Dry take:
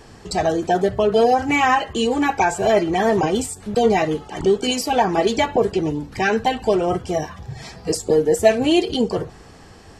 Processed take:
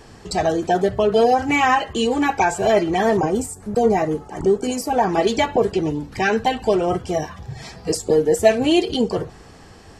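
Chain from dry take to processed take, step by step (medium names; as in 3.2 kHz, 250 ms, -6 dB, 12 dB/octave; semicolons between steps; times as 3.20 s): 3.17–5.03 s: peaking EQ 3.3 kHz -13.5 dB 1.2 oct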